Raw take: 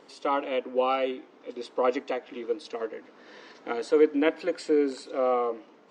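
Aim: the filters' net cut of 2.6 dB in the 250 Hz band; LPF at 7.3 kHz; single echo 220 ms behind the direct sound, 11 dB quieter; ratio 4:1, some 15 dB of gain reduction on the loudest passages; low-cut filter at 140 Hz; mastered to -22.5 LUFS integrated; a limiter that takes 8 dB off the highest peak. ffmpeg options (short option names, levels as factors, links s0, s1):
-af "highpass=140,lowpass=7300,equalizer=f=250:t=o:g=-3,acompressor=threshold=0.0158:ratio=4,alimiter=level_in=2.24:limit=0.0631:level=0:latency=1,volume=0.447,aecho=1:1:220:0.282,volume=8.91"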